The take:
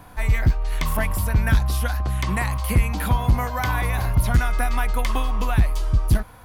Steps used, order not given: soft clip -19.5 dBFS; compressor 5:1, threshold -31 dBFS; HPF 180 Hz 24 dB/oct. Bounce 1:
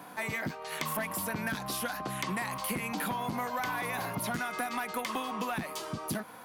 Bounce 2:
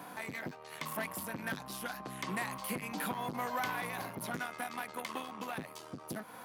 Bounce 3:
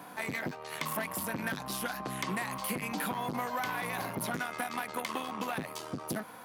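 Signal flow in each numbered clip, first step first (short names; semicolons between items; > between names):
HPF > soft clip > compressor; soft clip > compressor > HPF; soft clip > HPF > compressor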